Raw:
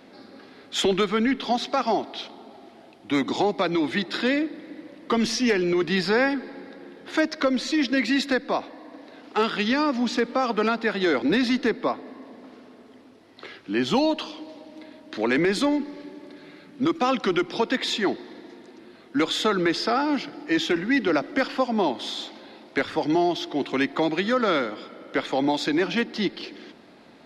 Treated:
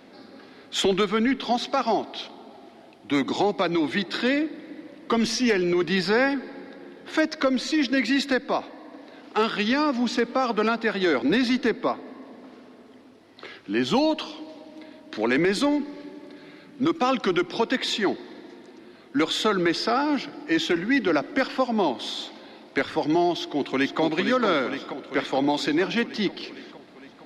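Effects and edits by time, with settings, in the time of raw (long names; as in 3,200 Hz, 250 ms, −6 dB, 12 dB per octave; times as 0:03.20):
0:23.38–0:24.01: delay throw 460 ms, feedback 70%, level −6 dB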